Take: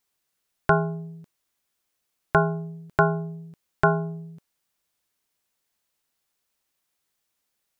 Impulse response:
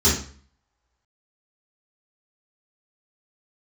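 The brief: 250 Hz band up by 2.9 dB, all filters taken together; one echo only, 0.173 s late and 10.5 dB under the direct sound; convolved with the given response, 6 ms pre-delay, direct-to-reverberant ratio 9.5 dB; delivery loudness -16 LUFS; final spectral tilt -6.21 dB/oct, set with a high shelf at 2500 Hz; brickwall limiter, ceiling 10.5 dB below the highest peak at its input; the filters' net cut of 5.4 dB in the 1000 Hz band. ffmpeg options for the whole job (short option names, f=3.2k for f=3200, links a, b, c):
-filter_complex "[0:a]equalizer=f=250:t=o:g=7.5,equalizer=f=1k:t=o:g=-6.5,highshelf=f=2.5k:g=-6,alimiter=limit=-17dB:level=0:latency=1,aecho=1:1:173:0.299,asplit=2[a][b];[1:a]atrim=start_sample=2205,adelay=6[c];[b][c]afir=irnorm=-1:irlink=0,volume=-26.5dB[d];[a][d]amix=inputs=2:normalize=0,volume=11dB"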